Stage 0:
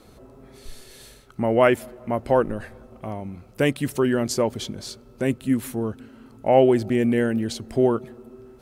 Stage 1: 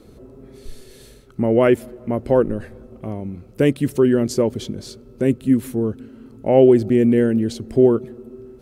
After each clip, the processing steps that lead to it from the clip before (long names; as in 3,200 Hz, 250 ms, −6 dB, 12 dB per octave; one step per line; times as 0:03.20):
low shelf with overshoot 570 Hz +6.5 dB, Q 1.5
level −2 dB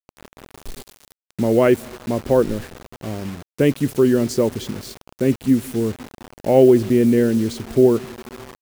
bit reduction 6 bits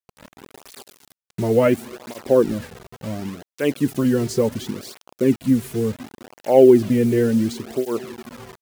through-zero flanger with one copy inverted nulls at 0.7 Hz, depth 3.9 ms
level +1.5 dB